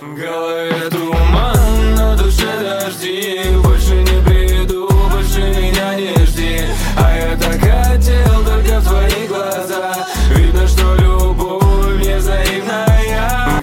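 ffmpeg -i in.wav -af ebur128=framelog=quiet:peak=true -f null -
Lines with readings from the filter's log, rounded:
Integrated loudness:
  I:         -14.2 LUFS
  Threshold: -24.2 LUFS
Loudness range:
  LRA:         1.1 LU
  Threshold: -34.0 LUFS
  LRA low:   -14.6 LUFS
  LRA high:  -13.5 LUFS
True peak:
  Peak:       -2.7 dBFS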